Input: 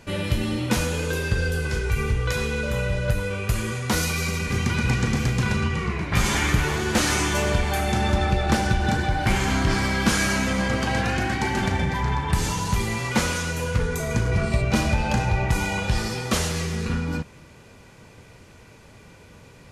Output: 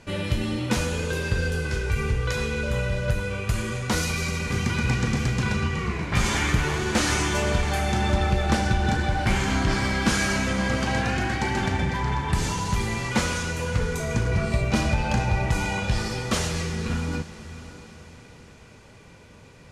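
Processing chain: low-pass 10 kHz 12 dB/octave; on a send: echo that smears into a reverb 618 ms, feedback 43%, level -14 dB; on the sum: trim -1.5 dB

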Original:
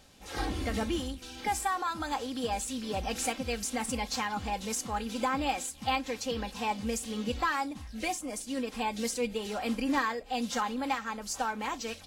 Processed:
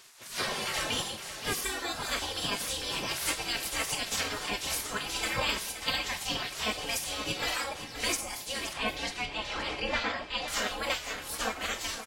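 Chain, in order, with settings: FDN reverb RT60 0.41 s, low-frequency decay 0.8×, high-frequency decay 1×, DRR 5.5 dB; spectral gate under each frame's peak -15 dB weak; 8.73–10.48 s: low-pass 3.9 kHz 12 dB/octave; on a send: delay 522 ms -11.5 dB; on the sum: trim +8.5 dB

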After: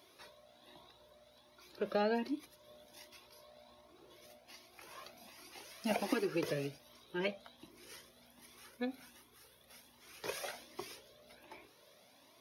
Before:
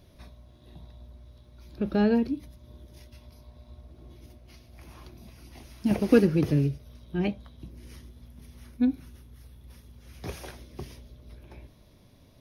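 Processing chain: high-pass 490 Hz 12 dB/octave; compression 3:1, threshold -31 dBFS, peak gain reduction 9.5 dB; Shepard-style flanger rising 1.3 Hz; trim +6 dB

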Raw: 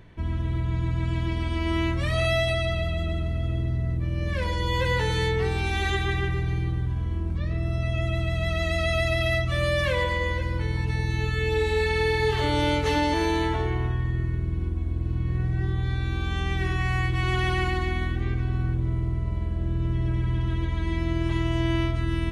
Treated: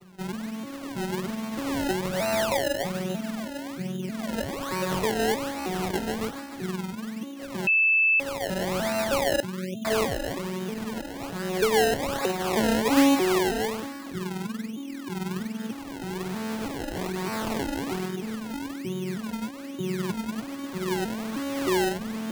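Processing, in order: vocoder on a broken chord minor triad, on F#3, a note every 314 ms; 9.40–9.85 s: inverse Chebyshev band-stop 870–4400 Hz, stop band 50 dB; decimation with a swept rate 26×, swing 100% 1.2 Hz; 7.67–8.20 s: bleep 2.63 kHz -17.5 dBFS

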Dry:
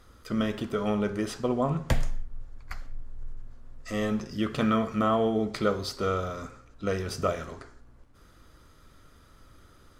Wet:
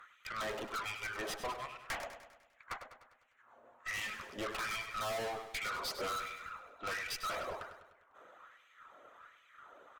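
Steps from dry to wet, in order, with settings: local Wiener filter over 9 samples; LFO high-pass sine 1.3 Hz 590–2500 Hz; in parallel at -6.5 dB: hysteresis with a dead band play -24 dBFS; on the sum: dynamic bell 2.2 kHz, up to +4 dB, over -46 dBFS, Q 2.7; valve stage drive 41 dB, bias 0.45; reverb removal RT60 0.77 s; on a send: feedback delay 100 ms, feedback 53%, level -10 dB; on the sum: trim +5.5 dB

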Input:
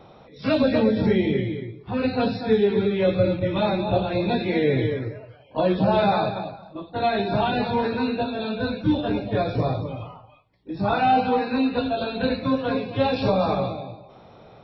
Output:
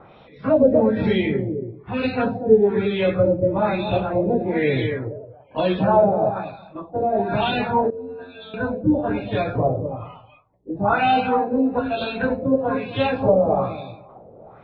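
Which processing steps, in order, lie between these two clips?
LFO low-pass sine 1.1 Hz 500–3300 Hz; 7.90–8.54 s: inharmonic resonator 88 Hz, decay 0.62 s, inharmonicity 0.002

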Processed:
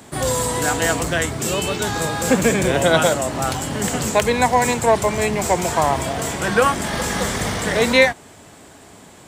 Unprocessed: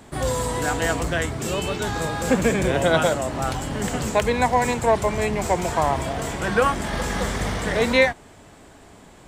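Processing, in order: high-pass 78 Hz; treble shelf 4.7 kHz +7 dB; trim +3 dB

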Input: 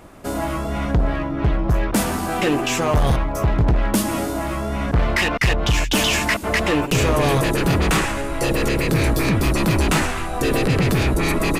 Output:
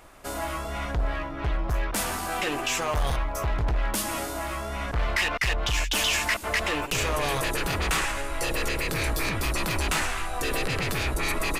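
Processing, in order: peaking EQ 190 Hz -13 dB 2.9 oct; in parallel at -1 dB: peak limiter -17.5 dBFS, peak gain reduction 7.5 dB; on the sum: trim -7.5 dB

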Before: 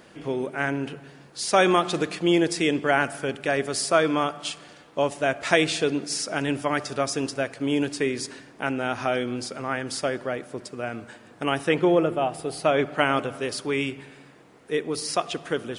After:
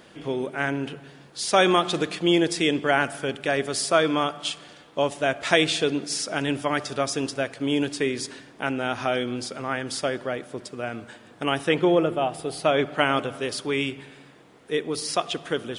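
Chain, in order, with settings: peaking EQ 3.4 kHz +5 dB 0.37 oct

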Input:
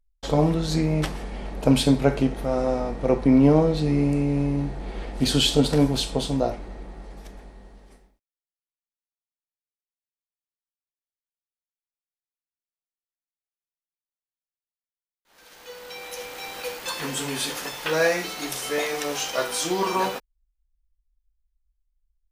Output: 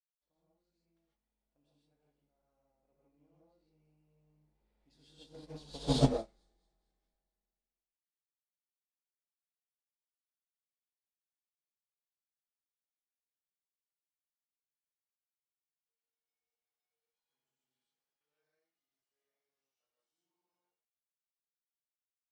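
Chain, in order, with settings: Doppler pass-by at 5.90 s, 23 m/s, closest 1.6 m; treble shelf 3.8 kHz +7.5 dB; in parallel at -5 dB: saturation -28 dBFS, distortion -8 dB; on the sum: distance through air 71 m; on a send: feedback echo behind a high-pass 223 ms, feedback 48%, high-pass 4.5 kHz, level -14 dB; on the sum: gated-style reverb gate 180 ms rising, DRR -5 dB; upward expansion 2.5:1, over -33 dBFS; trim -4 dB

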